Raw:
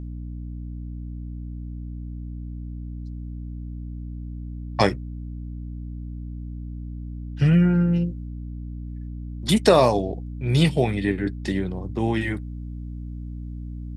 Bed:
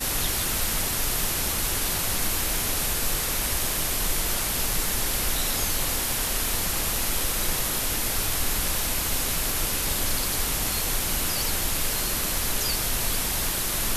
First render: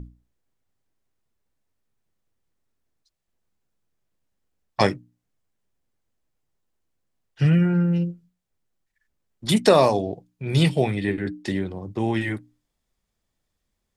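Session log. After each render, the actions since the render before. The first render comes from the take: hum notches 60/120/180/240/300 Hz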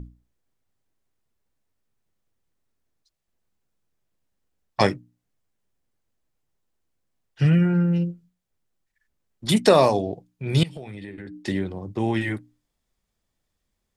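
10.63–11.46 s: compression 12:1, threshold -33 dBFS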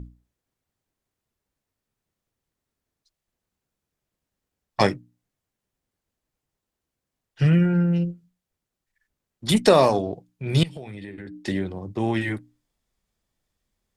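Chebyshev shaper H 8 -33 dB, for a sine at -2.5 dBFS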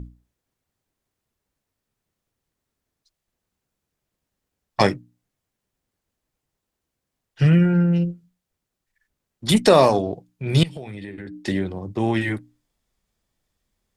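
trim +2.5 dB; peak limiter -2 dBFS, peak gain reduction 2 dB

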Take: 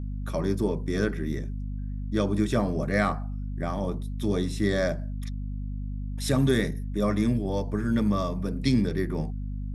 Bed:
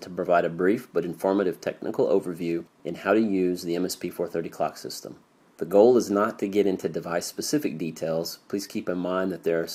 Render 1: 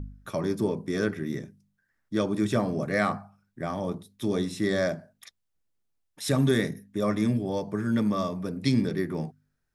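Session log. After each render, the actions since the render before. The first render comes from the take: de-hum 50 Hz, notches 5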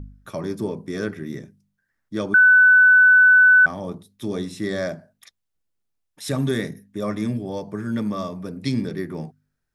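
2.34–3.66 s: bleep 1.5 kHz -9 dBFS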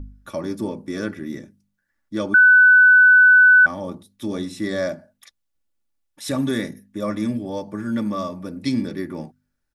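comb 3.5 ms, depth 48%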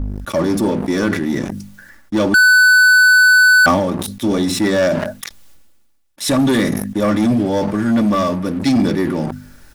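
waveshaping leveller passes 3; decay stretcher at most 40 dB/s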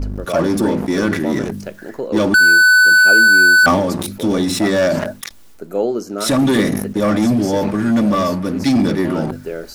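add bed -2 dB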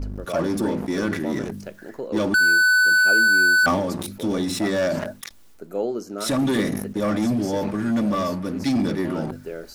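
trim -7 dB

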